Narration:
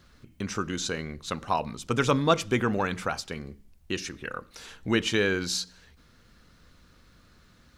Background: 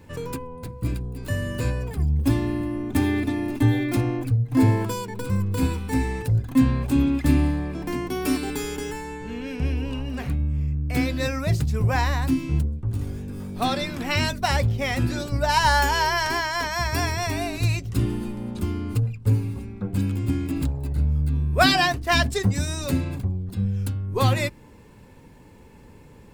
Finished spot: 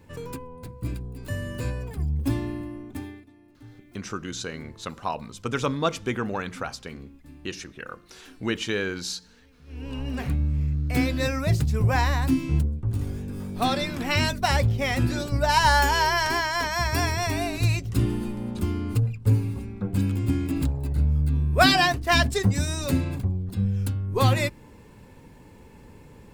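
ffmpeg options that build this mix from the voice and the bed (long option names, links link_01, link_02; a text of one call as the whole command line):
ffmpeg -i stem1.wav -i stem2.wav -filter_complex "[0:a]adelay=3550,volume=-2.5dB[link_01];[1:a]volume=24dB,afade=type=out:start_time=2.37:duration=0.88:silence=0.0630957,afade=type=in:start_time=9.66:duration=0.44:silence=0.0375837[link_02];[link_01][link_02]amix=inputs=2:normalize=0" out.wav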